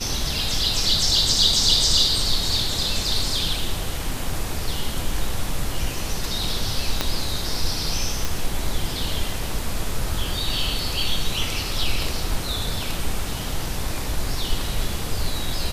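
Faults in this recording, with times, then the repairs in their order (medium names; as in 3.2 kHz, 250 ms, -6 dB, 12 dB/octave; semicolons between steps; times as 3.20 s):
7.01 s: pop -5 dBFS
8.25 s: pop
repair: de-click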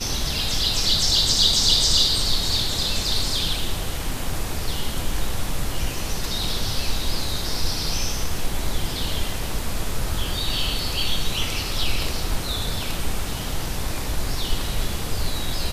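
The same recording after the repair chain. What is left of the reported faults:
7.01 s: pop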